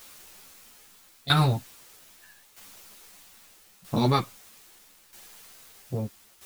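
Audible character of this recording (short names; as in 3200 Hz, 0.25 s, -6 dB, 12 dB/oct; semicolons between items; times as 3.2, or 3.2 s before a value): phasing stages 2, 0.39 Hz, lowest notch 490–1600 Hz; a quantiser's noise floor 10-bit, dither triangular; tremolo saw down 0.78 Hz, depth 70%; a shimmering, thickened sound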